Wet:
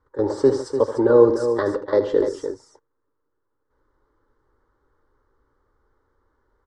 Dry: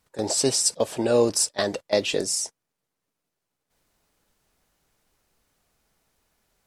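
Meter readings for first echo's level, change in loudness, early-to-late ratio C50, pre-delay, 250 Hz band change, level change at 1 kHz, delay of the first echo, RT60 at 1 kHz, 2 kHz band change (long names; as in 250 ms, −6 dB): −11.5 dB, +3.5 dB, no reverb audible, no reverb audible, +6.0 dB, +4.0 dB, 78 ms, no reverb audible, −2.0 dB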